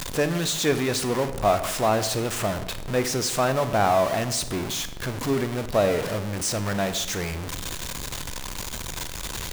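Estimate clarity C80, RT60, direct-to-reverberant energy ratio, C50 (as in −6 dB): 14.0 dB, 1.0 s, 10.0 dB, 12.0 dB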